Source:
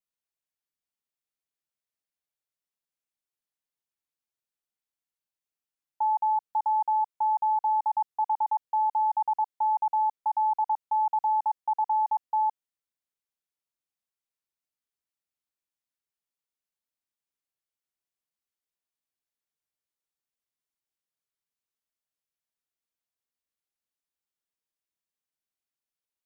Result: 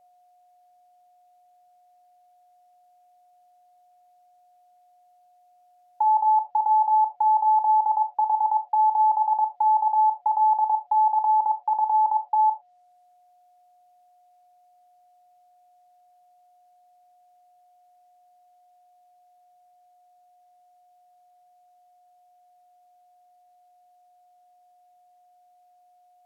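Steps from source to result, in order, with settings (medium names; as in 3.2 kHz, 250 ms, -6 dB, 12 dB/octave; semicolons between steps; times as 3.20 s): low-pass that closes with the level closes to 840 Hz, closed at -24 dBFS; 11.21–12.31 s: dynamic bell 720 Hz, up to -5 dB, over -45 dBFS, Q 2.3; in parallel at 0 dB: compressor with a negative ratio -34 dBFS, ratio -1; on the sum: whistle 720 Hz -61 dBFS; on a send at -11 dB: resonant high-pass 570 Hz, resonance Q 4.9 + reverberation, pre-delay 3 ms; on the sum: trim +2.5 dB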